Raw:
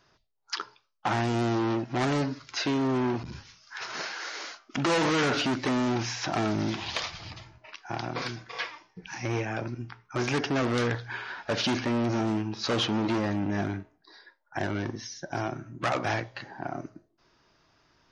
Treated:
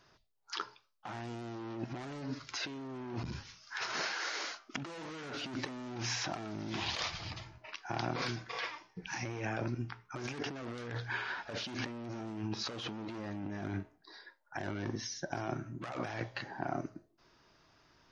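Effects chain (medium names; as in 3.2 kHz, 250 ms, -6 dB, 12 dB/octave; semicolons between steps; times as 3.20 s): compressor with a negative ratio -34 dBFS, ratio -1; trim -5.5 dB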